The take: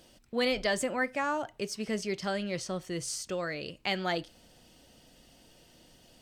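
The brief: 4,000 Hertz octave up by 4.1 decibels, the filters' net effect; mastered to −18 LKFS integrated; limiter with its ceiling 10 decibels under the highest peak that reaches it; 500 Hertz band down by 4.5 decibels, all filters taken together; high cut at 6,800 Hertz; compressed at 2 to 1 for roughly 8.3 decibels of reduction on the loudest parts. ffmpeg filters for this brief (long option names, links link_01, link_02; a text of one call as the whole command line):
ffmpeg -i in.wav -af "lowpass=6800,equalizer=frequency=500:width_type=o:gain=-5.5,equalizer=frequency=4000:width_type=o:gain=6,acompressor=threshold=-40dB:ratio=2,volume=23.5dB,alimiter=limit=-8dB:level=0:latency=1" out.wav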